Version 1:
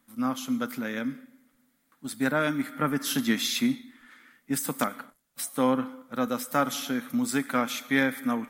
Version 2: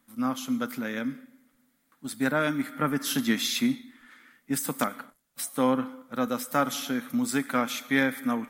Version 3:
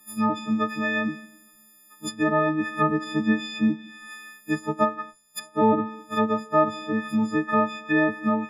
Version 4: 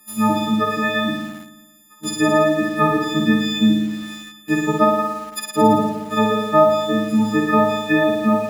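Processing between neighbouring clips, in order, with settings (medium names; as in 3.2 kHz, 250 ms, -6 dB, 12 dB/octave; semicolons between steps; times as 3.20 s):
no audible change
partials quantised in pitch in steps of 6 st; low-pass that closes with the level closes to 1.1 kHz, closed at -21 dBFS; trim +4 dB
flutter echo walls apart 9.6 m, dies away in 1.2 s; in parallel at -11 dB: word length cut 6-bit, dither none; on the sum: trim +3.5 dB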